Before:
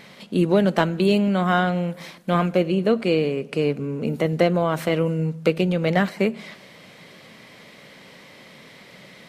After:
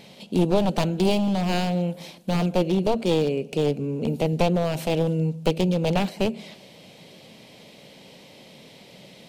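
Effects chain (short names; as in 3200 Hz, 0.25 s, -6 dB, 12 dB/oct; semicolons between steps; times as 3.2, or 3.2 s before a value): one-sided fold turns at -18.5 dBFS; band shelf 1500 Hz -10.5 dB 1.2 oct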